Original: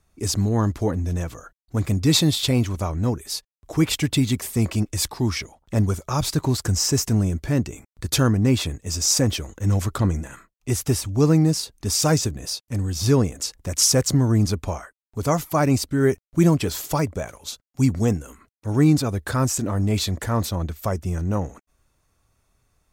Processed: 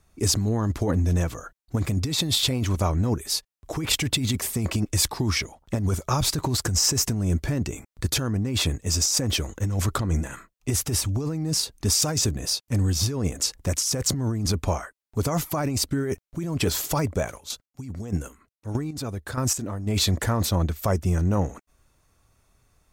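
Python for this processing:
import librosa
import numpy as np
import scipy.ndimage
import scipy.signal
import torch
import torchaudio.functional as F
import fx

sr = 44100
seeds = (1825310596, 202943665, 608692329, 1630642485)

y = fx.over_compress(x, sr, threshold_db=-23.0, ratio=-1.0)
y = fx.chopper(y, sr, hz=1.6, depth_pct=65, duty_pct=25, at=(17.39, 19.86), fade=0.02)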